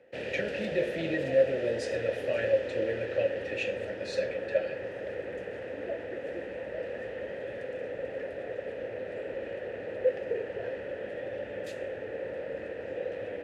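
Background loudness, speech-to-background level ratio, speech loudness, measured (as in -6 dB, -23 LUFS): -36.5 LUFS, 5.0 dB, -31.5 LUFS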